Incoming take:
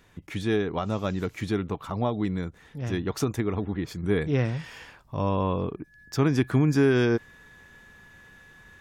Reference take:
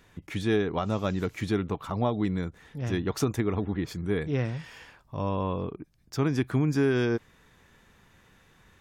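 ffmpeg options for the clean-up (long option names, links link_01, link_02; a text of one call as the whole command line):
ffmpeg -i in.wav -af "bandreject=frequency=1700:width=30,asetnsamples=nb_out_samples=441:pad=0,asendcmd='4.03 volume volume -3.5dB',volume=0dB" out.wav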